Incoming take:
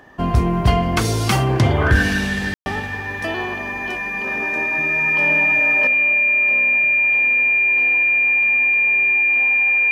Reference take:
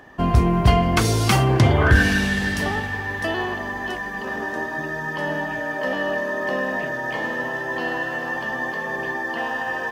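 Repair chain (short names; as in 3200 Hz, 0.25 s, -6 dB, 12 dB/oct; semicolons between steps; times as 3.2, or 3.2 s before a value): notch 2400 Hz, Q 30; room tone fill 2.54–2.66; gain correction +10.5 dB, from 5.87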